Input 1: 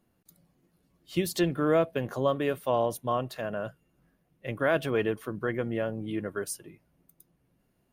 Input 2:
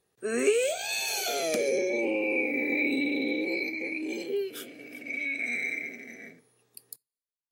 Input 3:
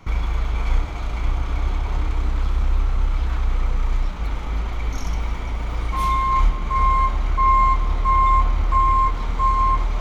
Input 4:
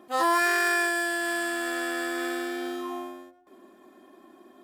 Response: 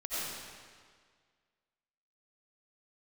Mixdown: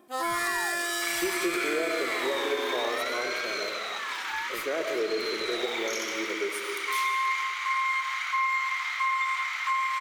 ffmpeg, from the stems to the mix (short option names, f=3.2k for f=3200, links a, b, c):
-filter_complex "[0:a]highpass=f=390:t=q:w=4.8,adelay=50,volume=-11.5dB,asplit=2[a][b];[b]volume=-6.5dB[c];[1:a]asoftclip=type=tanh:threshold=-22.5dB,aeval=exprs='val(0)*sin(2*PI*1600*n/s+1600*0.2/0.58*sin(2*PI*0.58*n/s))':c=same,volume=-1dB[d];[2:a]adynamicequalizer=threshold=0.00501:dfrequency=2000:dqfactor=4.2:tfrequency=2000:tqfactor=4.2:attack=5:release=100:ratio=0.375:range=3.5:mode=boostabove:tftype=bell,highpass=f=1.4k:w=0.5412,highpass=f=1.4k:w=1.3066,highshelf=f=6.2k:g=-4,adelay=950,volume=2.5dB,asplit=2[e][f];[f]volume=-8dB[g];[3:a]volume=-5.5dB[h];[4:a]atrim=start_sample=2205[i];[c][g]amix=inputs=2:normalize=0[j];[j][i]afir=irnorm=-1:irlink=0[k];[a][d][e][h][k]amix=inputs=5:normalize=0,highshelf=f=5k:g=6,acompressor=threshold=-25dB:ratio=3"